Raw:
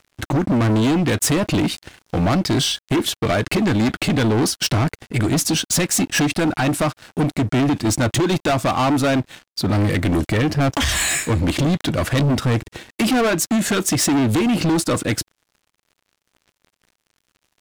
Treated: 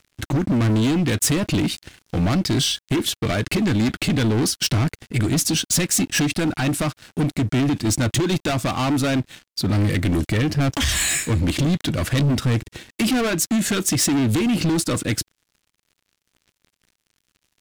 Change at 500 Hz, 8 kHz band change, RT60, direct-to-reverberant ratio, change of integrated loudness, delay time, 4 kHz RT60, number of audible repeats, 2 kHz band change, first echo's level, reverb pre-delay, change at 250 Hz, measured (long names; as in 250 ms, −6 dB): −4.5 dB, 0.0 dB, no reverb audible, no reverb audible, −1.5 dB, no echo audible, no reverb audible, no echo audible, −2.5 dB, no echo audible, no reverb audible, −2.0 dB